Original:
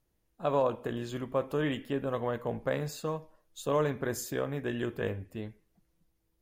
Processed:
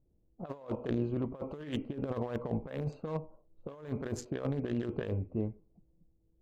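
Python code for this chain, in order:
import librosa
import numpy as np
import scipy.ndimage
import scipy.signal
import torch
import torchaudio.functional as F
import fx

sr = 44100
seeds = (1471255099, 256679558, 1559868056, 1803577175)

y = fx.wiener(x, sr, points=25)
y = fx.env_lowpass(y, sr, base_hz=490.0, full_db=-27.5)
y = fx.over_compress(y, sr, threshold_db=-36.0, ratio=-0.5)
y = y * librosa.db_to_amplitude(1.5)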